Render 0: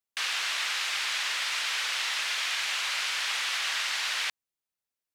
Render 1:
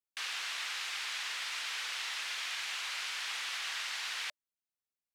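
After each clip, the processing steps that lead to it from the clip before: band-stop 600 Hz, Q 12; trim -8 dB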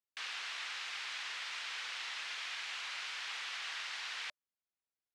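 distance through air 66 m; trim -2.5 dB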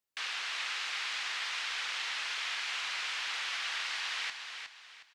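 feedback delay 363 ms, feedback 32%, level -7 dB; trim +5 dB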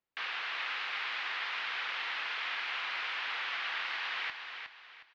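distance through air 330 m; trim +4.5 dB

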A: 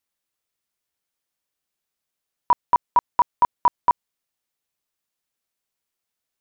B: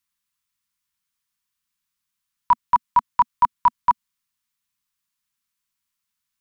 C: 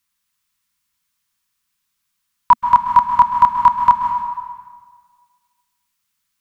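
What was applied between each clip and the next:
elliptic band-stop 230–980 Hz; trim +2.5 dB
plate-style reverb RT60 1.6 s, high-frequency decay 0.85×, pre-delay 120 ms, DRR 4.5 dB; trim +6.5 dB

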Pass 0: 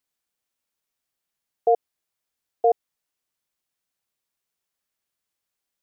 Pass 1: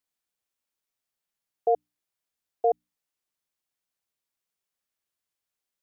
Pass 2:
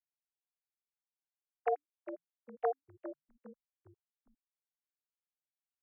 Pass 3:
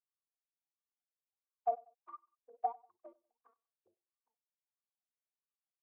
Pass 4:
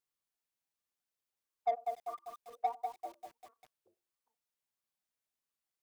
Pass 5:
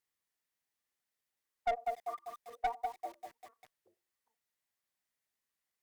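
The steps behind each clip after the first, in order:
hum notches 60/120/180/240/300 Hz; trim -4 dB
formants replaced by sine waves; compression, threshold -24 dBFS, peak gain reduction 7.5 dB; frequency-shifting echo 406 ms, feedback 35%, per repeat -120 Hz, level -12 dB; trim -4 dB
comb filter that takes the minimum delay 2.6 ms; wah-wah 1.5 Hz 510–1200 Hz, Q 14; feedback delay 95 ms, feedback 33%, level -23.5 dB; trim +6.5 dB
in parallel at -1.5 dB: saturation -35.5 dBFS, distortion -7 dB; on the sum: bit-crushed delay 197 ms, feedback 55%, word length 9-bit, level -5 dB; trim -1.5 dB
peaking EQ 1.9 kHz +7.5 dB 0.3 oct; one-sided clip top -31.5 dBFS; trim +1.5 dB

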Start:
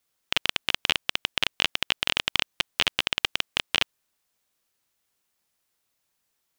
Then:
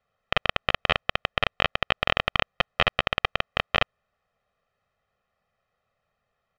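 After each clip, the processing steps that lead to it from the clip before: low-pass 1.6 kHz 12 dB/octave; comb 1.6 ms, depth 99%; trim +6 dB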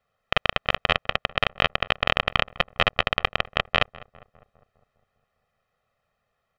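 filtered feedback delay 202 ms, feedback 60%, low-pass 1.4 kHz, level -19 dB; trim +1.5 dB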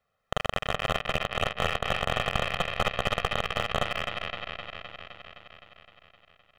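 backward echo that repeats 129 ms, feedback 83%, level -9.5 dB; slew-rate limiter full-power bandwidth 240 Hz; trim -2 dB

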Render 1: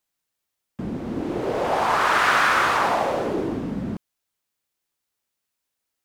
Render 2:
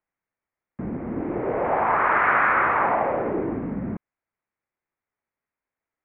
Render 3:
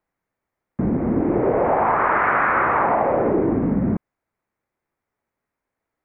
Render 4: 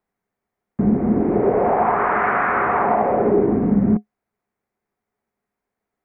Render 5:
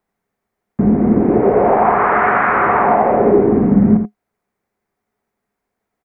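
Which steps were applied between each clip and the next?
elliptic low-pass 2.2 kHz, stop band 70 dB
tilt shelf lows +4.5 dB, about 1.4 kHz; compression, threshold -21 dBFS, peak gain reduction 6.5 dB; trim +6 dB
small resonant body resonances 210/410/720 Hz, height 10 dB, ringing for 100 ms; trim -1.5 dB
delay 84 ms -8 dB; trim +4.5 dB

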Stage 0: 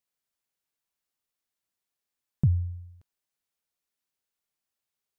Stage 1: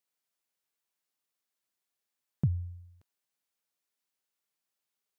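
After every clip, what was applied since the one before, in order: high-pass 190 Hz 6 dB/octave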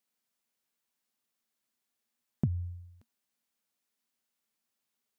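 peaking EQ 230 Hz +11.5 dB 0.33 oct; compression 2.5:1, threshold -29 dBFS, peak gain reduction 6 dB; trim +2 dB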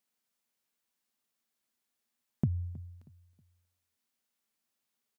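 feedback delay 318 ms, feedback 33%, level -20.5 dB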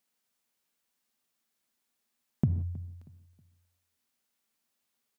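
gated-style reverb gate 200 ms flat, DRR 11.5 dB; trim +3 dB

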